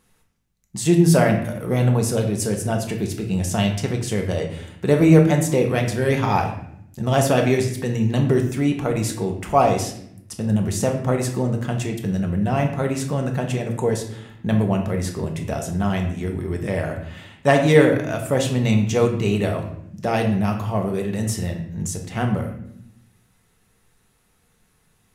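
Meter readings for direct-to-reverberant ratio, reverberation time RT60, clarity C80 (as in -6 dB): 2.0 dB, 0.75 s, 10.5 dB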